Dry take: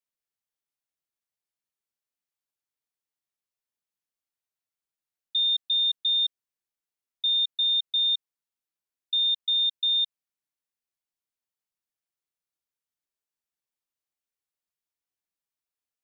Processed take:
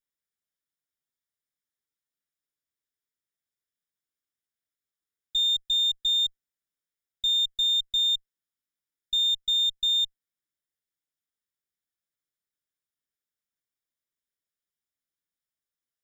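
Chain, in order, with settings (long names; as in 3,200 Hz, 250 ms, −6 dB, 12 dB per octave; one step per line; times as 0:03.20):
lower of the sound and its delayed copy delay 0.56 ms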